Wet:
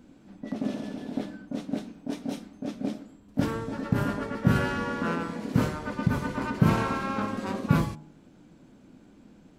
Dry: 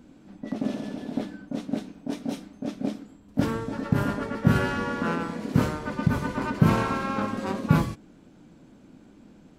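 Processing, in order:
hum removal 76.76 Hz, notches 18
level −1.5 dB

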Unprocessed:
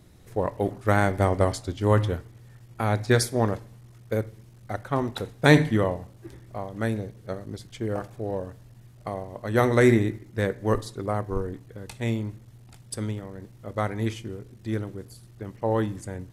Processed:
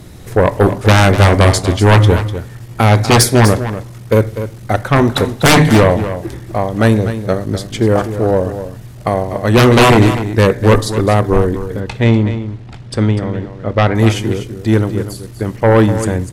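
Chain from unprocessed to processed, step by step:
0:11.80–0:13.95: low-pass filter 3,600 Hz 12 dB per octave
sine wavefolder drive 15 dB, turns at −3 dBFS
single-tap delay 247 ms −11 dB
level −1 dB

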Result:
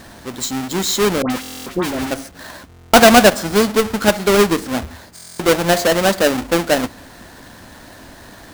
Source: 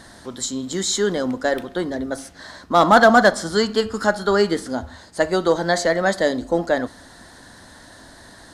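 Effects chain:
each half-wave held at its own peak
0:01.22–0:02.11: all-pass dispersion highs, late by 80 ms, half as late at 1,400 Hz
buffer that repeats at 0:01.41/0:02.68/0:05.14, samples 1,024, times 10

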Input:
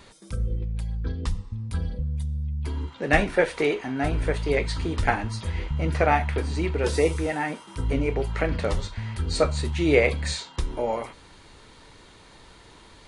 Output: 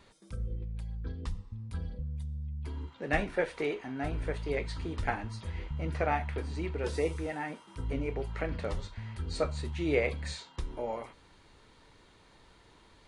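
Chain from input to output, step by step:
high-shelf EQ 5,000 Hz −5 dB
level −9 dB

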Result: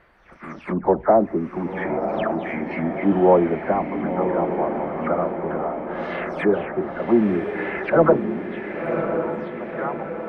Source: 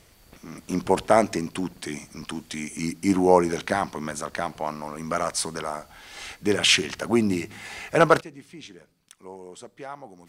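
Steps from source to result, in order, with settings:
every frequency bin delayed by itself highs early, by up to 250 ms
leveller curve on the samples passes 1
drawn EQ curve 150 Hz 0 dB, 1,700 Hz +12 dB, 7,000 Hz −23 dB
treble cut that deepens with the level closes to 550 Hz, closed at −19 dBFS
feedback delay with all-pass diffusion 1,043 ms, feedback 57%, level −6 dB
level −1.5 dB

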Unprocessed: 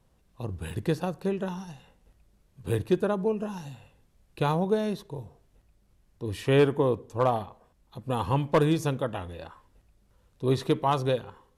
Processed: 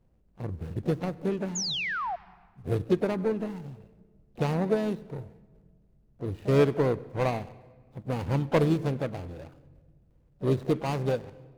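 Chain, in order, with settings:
running median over 41 samples
pitch-shifted copies added +3 semitones −17 dB, +7 semitones −16 dB
sound drawn into the spectrogram fall, 0:01.55–0:02.16, 660–7,200 Hz −31 dBFS
on a send: convolution reverb RT60 1.7 s, pre-delay 98 ms, DRR 21 dB

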